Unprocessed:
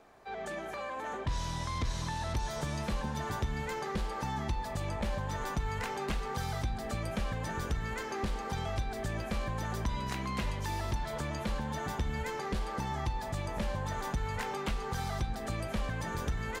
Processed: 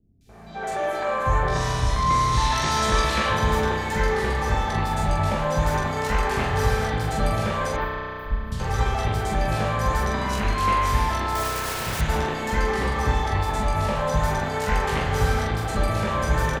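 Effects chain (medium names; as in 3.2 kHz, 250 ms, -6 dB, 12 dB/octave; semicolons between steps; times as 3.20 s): 2.11–3.07 s: peaking EQ 3.5 kHz +8.5 dB 2.5 oct; on a send: early reflections 19 ms -4.5 dB, 44 ms -3.5 dB; on the sum: resampled via 32 kHz; 7.55–8.31 s: inverse Chebyshev band-stop 180–5900 Hz, stop band 70 dB; 11.14–11.80 s: integer overflow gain 34.5 dB; three bands offset in time lows, highs, mids 210/290 ms, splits 210/3200 Hz; spring tank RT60 3.2 s, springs 32 ms, chirp 30 ms, DRR -1.5 dB; trim +8 dB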